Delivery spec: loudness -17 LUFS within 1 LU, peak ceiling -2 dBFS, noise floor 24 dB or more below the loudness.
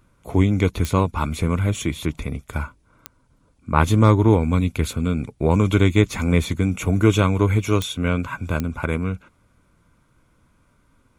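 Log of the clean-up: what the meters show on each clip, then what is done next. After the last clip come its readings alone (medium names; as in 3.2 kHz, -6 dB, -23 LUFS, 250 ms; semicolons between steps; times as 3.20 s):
clicks found 4; loudness -21.0 LUFS; peak level -1.5 dBFS; loudness target -17.0 LUFS
-> de-click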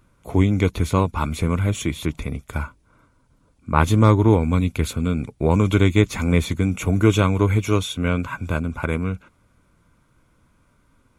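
clicks found 0; loudness -21.0 LUFS; peak level -1.5 dBFS; loudness target -17.0 LUFS
-> trim +4 dB; peak limiter -2 dBFS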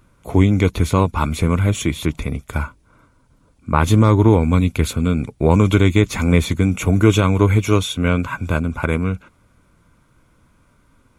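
loudness -17.5 LUFS; peak level -2.0 dBFS; noise floor -58 dBFS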